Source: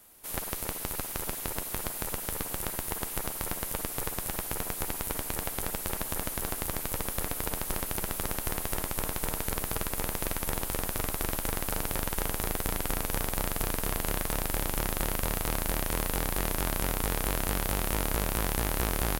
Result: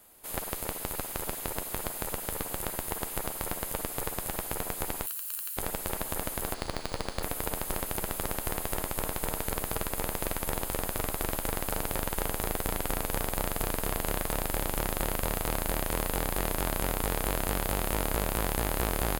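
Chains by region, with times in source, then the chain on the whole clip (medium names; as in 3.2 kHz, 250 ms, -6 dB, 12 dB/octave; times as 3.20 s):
5.06–5.57 s: comb filter that takes the minimum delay 0.7 ms + high-pass 380 Hz 24 dB/octave + differentiator
6.54–7.23 s: peaking EQ 4.5 kHz +10.5 dB 0.3 oct + careless resampling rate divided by 3×, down filtered, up hold
whole clip: peaking EQ 610 Hz +3.5 dB 1.6 oct; band-stop 5.7 kHz, Q 9.3; trim -1 dB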